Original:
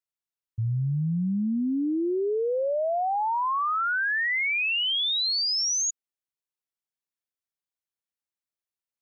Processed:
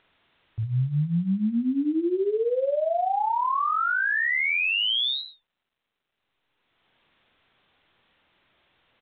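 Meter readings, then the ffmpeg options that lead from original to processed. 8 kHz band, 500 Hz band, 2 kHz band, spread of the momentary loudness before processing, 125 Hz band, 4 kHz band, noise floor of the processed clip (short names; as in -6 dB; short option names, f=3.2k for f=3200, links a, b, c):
n/a, +1.5 dB, +1.5 dB, 5 LU, +1.0 dB, -1.5 dB, -83 dBFS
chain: -filter_complex "[0:a]acompressor=mode=upward:threshold=-39dB:ratio=2.5,asplit=2[a][b];[b]adelay=47,volume=-4dB[c];[a][c]amix=inputs=2:normalize=0" -ar 8000 -c:a pcm_mulaw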